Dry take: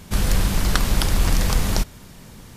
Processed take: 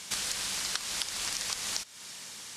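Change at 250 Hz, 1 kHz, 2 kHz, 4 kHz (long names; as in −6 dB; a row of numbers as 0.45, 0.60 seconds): −25.5, −13.5, −8.5, −3.5 decibels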